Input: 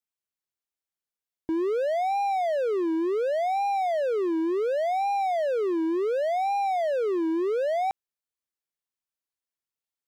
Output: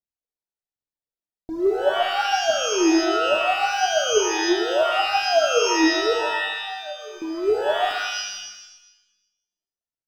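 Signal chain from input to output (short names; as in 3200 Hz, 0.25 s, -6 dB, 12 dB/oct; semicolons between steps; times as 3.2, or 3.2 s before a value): median filter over 15 samples; band shelf 1700 Hz -12.5 dB; phaser 1.2 Hz, delay 3.4 ms, feedback 71%; 6.13–7.22 metallic resonator 140 Hz, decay 0.61 s, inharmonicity 0.008; shimmer reverb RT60 1 s, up +12 st, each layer -2 dB, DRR 5 dB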